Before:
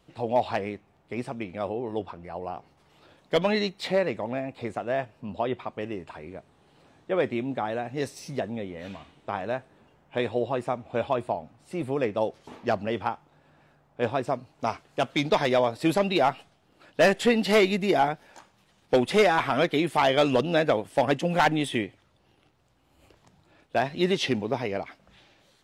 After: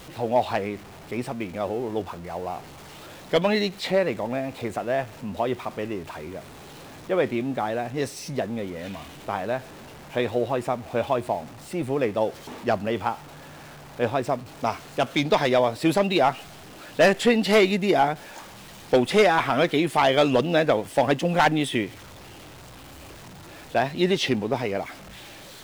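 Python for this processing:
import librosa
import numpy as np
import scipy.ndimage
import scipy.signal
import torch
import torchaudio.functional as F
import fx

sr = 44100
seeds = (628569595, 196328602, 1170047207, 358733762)

y = x + 0.5 * 10.0 ** (-41.0 / 20.0) * np.sign(x)
y = F.gain(torch.from_numpy(y), 2.0).numpy()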